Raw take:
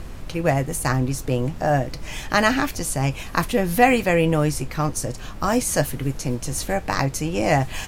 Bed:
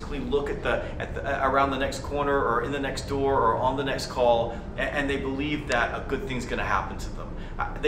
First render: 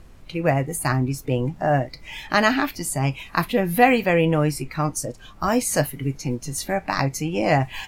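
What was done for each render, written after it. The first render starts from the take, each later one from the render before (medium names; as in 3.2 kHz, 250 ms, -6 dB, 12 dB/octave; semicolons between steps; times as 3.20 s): noise print and reduce 12 dB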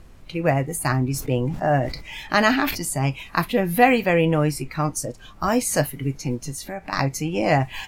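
1.10–2.85 s: decay stretcher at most 78 dB/s; 6.51–6.93 s: compression 2:1, threshold -33 dBFS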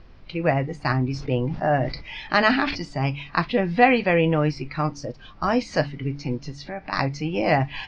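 elliptic low-pass 5.1 kHz, stop band 70 dB; de-hum 71.4 Hz, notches 4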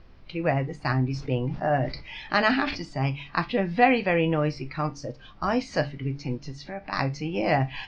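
feedback comb 66 Hz, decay 0.24 s, harmonics all, mix 50%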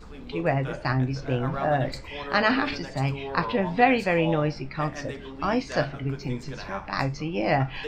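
add bed -11 dB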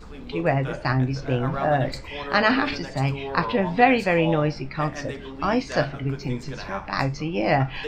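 trim +2.5 dB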